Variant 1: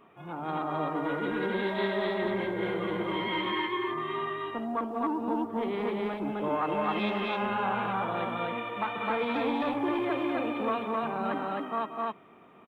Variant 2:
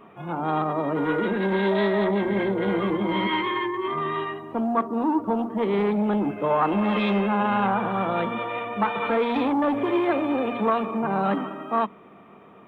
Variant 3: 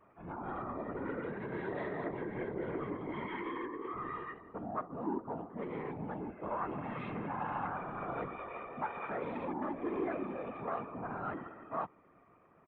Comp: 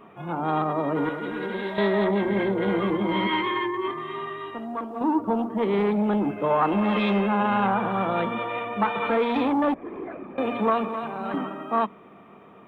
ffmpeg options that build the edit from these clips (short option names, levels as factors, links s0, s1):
-filter_complex "[0:a]asplit=3[s0][s1][s2];[1:a]asplit=5[s3][s4][s5][s6][s7];[s3]atrim=end=1.092[s8];[s0]atrim=start=1.088:end=1.782[s9];[s4]atrim=start=1.778:end=3.912[s10];[s1]atrim=start=3.908:end=5.012[s11];[s5]atrim=start=5.008:end=9.742[s12];[2:a]atrim=start=9.738:end=10.382[s13];[s6]atrim=start=10.378:end=10.892[s14];[s2]atrim=start=10.888:end=11.342[s15];[s7]atrim=start=11.338[s16];[s8][s9]acrossfade=d=0.004:c1=hsin:c2=hsin[s17];[s17][s10]acrossfade=d=0.004:c1=hsin:c2=hsin[s18];[s18][s11]acrossfade=d=0.004:c1=hsin:c2=hsin[s19];[s19][s12]acrossfade=d=0.004:c1=hsin:c2=hsin[s20];[s20][s13]acrossfade=d=0.004:c1=hsin:c2=hsin[s21];[s21][s14]acrossfade=d=0.004:c1=hsin:c2=hsin[s22];[s22][s15]acrossfade=d=0.004:c1=hsin:c2=hsin[s23];[s23][s16]acrossfade=d=0.004:c1=hsin:c2=hsin"